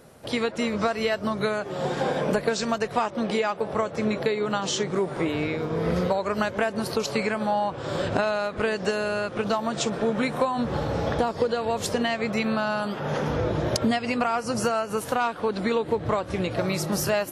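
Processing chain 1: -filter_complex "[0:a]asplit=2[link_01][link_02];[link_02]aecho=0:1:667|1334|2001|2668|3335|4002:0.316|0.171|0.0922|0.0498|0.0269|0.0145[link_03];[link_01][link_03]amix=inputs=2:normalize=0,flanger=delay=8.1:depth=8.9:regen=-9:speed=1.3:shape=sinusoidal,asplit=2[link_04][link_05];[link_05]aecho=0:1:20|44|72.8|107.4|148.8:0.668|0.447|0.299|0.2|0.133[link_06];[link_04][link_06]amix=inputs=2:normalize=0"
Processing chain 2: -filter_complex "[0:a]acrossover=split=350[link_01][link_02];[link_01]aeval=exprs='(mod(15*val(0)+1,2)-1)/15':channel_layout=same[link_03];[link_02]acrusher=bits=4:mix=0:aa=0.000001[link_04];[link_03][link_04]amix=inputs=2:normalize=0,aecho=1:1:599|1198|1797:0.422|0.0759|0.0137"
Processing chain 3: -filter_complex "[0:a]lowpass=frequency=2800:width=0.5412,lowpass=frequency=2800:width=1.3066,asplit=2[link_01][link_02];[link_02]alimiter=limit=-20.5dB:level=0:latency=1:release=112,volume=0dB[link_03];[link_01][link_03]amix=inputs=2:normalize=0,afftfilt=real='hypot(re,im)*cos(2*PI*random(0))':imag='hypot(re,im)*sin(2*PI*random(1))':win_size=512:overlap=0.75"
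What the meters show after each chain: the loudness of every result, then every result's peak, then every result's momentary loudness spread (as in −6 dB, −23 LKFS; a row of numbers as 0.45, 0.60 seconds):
−26.5, −25.0, −28.0 LKFS; −11.0, −8.0, −11.5 dBFS; 3, 2, 3 LU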